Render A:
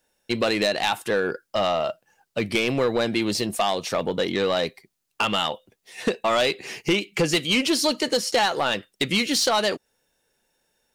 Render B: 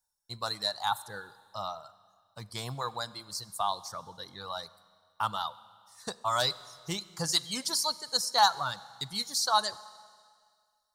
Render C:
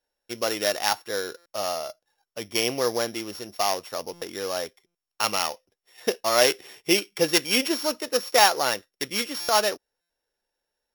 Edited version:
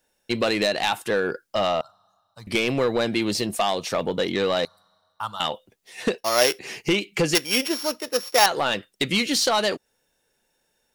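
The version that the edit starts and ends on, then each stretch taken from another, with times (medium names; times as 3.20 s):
A
1.81–2.47 s: from B
4.65–5.40 s: from B
6.18–6.59 s: from C
7.35–8.46 s: from C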